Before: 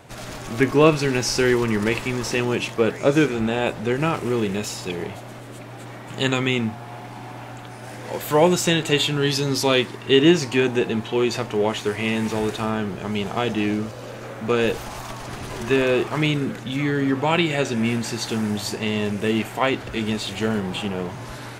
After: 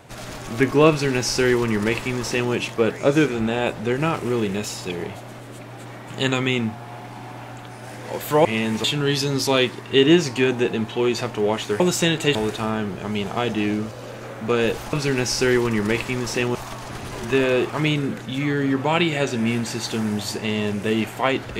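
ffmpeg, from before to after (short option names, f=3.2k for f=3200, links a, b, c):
-filter_complex "[0:a]asplit=7[a][b][c][d][e][f][g];[a]atrim=end=8.452[h];[b]atrim=start=11.958:end=12.352[i];[c]atrim=start=8.998:end=11.962[j];[d]atrim=start=8.448:end=9.002[k];[e]atrim=start=12.348:end=14.932[l];[f]atrim=start=0.898:end=2.522[m];[g]atrim=start=14.928[n];[h][i]acrossfade=d=0.004:c1=hsin:c2=hsin[o];[o][j]acrossfade=d=0.004:c1=hsin:c2=hsin[p];[p][k]acrossfade=d=0.004:c1=hsin:c2=hsin[q];[q][l]acrossfade=d=0.004:c1=hsin:c2=hsin[r];[r][m]acrossfade=d=0.004:c1=hsin:c2=hsin[s];[s][n]acrossfade=d=0.004:c1=hsin:c2=hsin"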